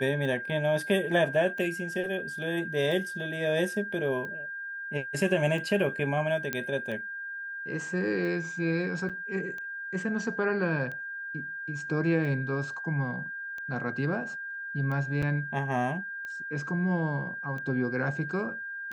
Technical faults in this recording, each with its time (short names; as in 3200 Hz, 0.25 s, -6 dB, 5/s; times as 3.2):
tick 45 rpm -27 dBFS
tone 1600 Hz -35 dBFS
6.53 pop -14 dBFS
9.09–9.1 gap 6.6 ms
15.22–15.23 gap 6.2 ms